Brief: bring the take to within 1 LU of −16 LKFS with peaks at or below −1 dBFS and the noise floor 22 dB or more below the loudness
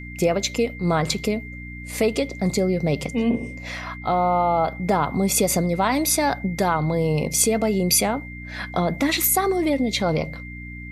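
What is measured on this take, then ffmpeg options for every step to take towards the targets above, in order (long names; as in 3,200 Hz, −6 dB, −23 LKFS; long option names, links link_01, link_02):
mains hum 60 Hz; hum harmonics up to 300 Hz; level of the hum −35 dBFS; interfering tone 2,100 Hz; level of the tone −38 dBFS; integrated loudness −22.0 LKFS; sample peak −5.5 dBFS; target loudness −16.0 LKFS
→ -af "bandreject=frequency=60:width_type=h:width=4,bandreject=frequency=120:width_type=h:width=4,bandreject=frequency=180:width_type=h:width=4,bandreject=frequency=240:width_type=h:width=4,bandreject=frequency=300:width_type=h:width=4"
-af "bandreject=frequency=2100:width=30"
-af "volume=6dB,alimiter=limit=-1dB:level=0:latency=1"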